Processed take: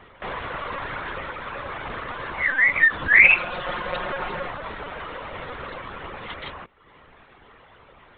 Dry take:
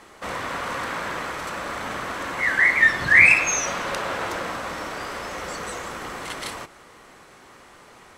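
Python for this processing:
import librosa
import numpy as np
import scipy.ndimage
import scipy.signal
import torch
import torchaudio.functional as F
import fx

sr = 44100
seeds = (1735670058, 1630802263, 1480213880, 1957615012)

y = fx.dereverb_blind(x, sr, rt60_s=0.78)
y = fx.lpc_vocoder(y, sr, seeds[0], excitation='pitch_kept', order=16)
y = fx.comb(y, sr, ms=5.6, depth=0.59, at=(3.24, 4.48))
y = fx.doppler_dist(y, sr, depth_ms=0.12)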